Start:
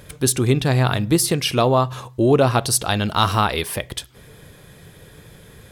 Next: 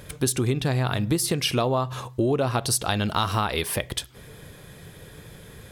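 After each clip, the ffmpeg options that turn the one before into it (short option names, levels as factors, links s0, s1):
-af "acompressor=threshold=0.1:ratio=5"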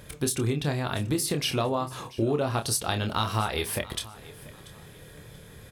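-filter_complex "[0:a]asplit=2[s0][s1];[s1]adelay=27,volume=0.473[s2];[s0][s2]amix=inputs=2:normalize=0,aecho=1:1:686|1372:0.106|0.0318,volume=0.631"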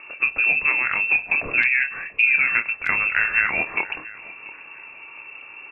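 -af "lowpass=f=2400:t=q:w=0.5098,lowpass=f=2400:t=q:w=0.6013,lowpass=f=2400:t=q:w=0.9,lowpass=f=2400:t=q:w=2.563,afreqshift=-2800,volume=2.24" -ar 32000 -c:a aac -b:a 32k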